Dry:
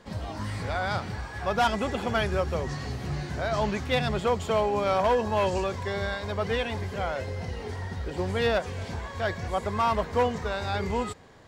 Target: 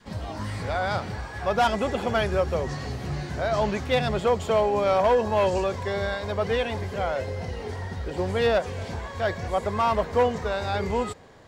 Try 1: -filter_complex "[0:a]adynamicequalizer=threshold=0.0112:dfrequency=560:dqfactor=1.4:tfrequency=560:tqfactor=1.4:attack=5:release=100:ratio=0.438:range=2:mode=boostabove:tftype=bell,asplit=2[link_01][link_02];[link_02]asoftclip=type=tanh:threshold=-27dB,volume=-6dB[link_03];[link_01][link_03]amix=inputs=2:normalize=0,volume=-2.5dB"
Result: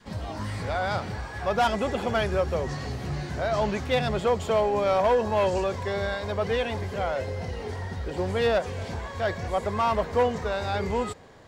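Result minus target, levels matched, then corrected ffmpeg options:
soft clipping: distortion +10 dB
-filter_complex "[0:a]adynamicequalizer=threshold=0.0112:dfrequency=560:dqfactor=1.4:tfrequency=560:tqfactor=1.4:attack=5:release=100:ratio=0.438:range=2:mode=boostabove:tftype=bell,asplit=2[link_01][link_02];[link_02]asoftclip=type=tanh:threshold=-17dB,volume=-6dB[link_03];[link_01][link_03]amix=inputs=2:normalize=0,volume=-2.5dB"

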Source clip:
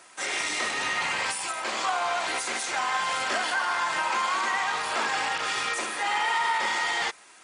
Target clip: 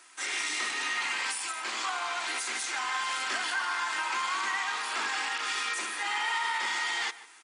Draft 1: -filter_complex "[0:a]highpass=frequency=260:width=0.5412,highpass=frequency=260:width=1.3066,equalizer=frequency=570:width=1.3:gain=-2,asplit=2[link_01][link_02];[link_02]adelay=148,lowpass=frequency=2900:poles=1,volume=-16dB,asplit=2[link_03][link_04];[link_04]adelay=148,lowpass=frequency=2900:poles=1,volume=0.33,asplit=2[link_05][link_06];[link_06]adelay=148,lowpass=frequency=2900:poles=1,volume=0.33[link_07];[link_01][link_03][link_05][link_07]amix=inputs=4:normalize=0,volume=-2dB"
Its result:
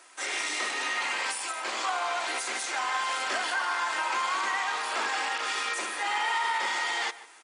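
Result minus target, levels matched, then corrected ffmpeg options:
500 Hz band +6.0 dB
-filter_complex "[0:a]highpass=frequency=260:width=0.5412,highpass=frequency=260:width=1.3066,equalizer=frequency=570:width=1.3:gain=-12,asplit=2[link_01][link_02];[link_02]adelay=148,lowpass=frequency=2900:poles=1,volume=-16dB,asplit=2[link_03][link_04];[link_04]adelay=148,lowpass=frequency=2900:poles=1,volume=0.33,asplit=2[link_05][link_06];[link_06]adelay=148,lowpass=frequency=2900:poles=1,volume=0.33[link_07];[link_01][link_03][link_05][link_07]amix=inputs=4:normalize=0,volume=-2dB"

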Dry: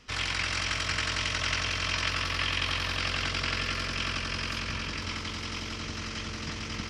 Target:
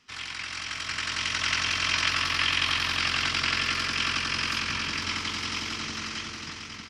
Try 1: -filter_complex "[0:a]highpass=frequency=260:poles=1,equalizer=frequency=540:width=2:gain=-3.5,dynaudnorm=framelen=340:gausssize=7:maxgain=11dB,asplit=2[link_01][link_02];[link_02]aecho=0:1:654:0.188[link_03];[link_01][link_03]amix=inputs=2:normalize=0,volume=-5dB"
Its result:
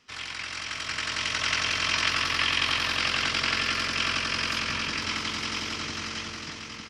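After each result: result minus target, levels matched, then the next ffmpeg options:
echo 244 ms late; 500 Hz band +4.0 dB
-filter_complex "[0:a]highpass=frequency=260:poles=1,equalizer=frequency=540:width=2:gain=-3.5,dynaudnorm=framelen=340:gausssize=7:maxgain=11dB,asplit=2[link_01][link_02];[link_02]aecho=0:1:410:0.188[link_03];[link_01][link_03]amix=inputs=2:normalize=0,volume=-5dB"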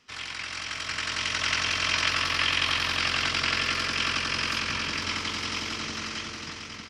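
500 Hz band +4.0 dB
-filter_complex "[0:a]highpass=frequency=260:poles=1,equalizer=frequency=540:width=2:gain=-10,dynaudnorm=framelen=340:gausssize=7:maxgain=11dB,asplit=2[link_01][link_02];[link_02]aecho=0:1:410:0.188[link_03];[link_01][link_03]amix=inputs=2:normalize=0,volume=-5dB"

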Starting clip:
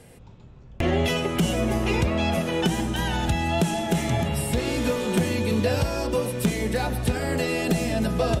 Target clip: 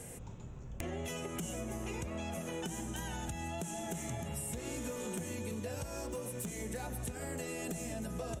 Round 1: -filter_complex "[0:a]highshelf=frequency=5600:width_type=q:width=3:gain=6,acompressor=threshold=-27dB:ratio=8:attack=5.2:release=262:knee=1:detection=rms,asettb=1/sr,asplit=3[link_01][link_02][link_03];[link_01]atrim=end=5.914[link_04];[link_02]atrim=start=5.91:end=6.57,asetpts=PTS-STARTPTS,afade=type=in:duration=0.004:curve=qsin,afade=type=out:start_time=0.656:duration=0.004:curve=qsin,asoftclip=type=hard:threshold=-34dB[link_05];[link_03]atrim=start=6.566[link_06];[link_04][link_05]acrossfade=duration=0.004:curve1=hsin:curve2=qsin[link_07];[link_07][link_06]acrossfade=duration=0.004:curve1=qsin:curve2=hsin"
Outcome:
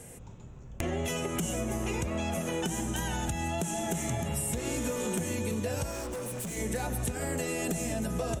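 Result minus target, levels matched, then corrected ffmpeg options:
downward compressor: peak gain reduction −8 dB
-filter_complex "[0:a]highshelf=frequency=5600:width_type=q:width=3:gain=6,acompressor=threshold=-36dB:ratio=8:attack=5.2:release=262:knee=1:detection=rms,asettb=1/sr,asplit=3[link_01][link_02][link_03];[link_01]atrim=end=5.914[link_04];[link_02]atrim=start=5.91:end=6.57,asetpts=PTS-STARTPTS,afade=type=in:duration=0.004:curve=qsin,afade=type=out:start_time=0.656:duration=0.004:curve=qsin,asoftclip=type=hard:threshold=-34dB[link_05];[link_03]atrim=start=6.566[link_06];[link_04][link_05]acrossfade=duration=0.004:curve1=hsin:curve2=qsin[link_07];[link_07][link_06]acrossfade=duration=0.004:curve1=qsin:curve2=hsin"

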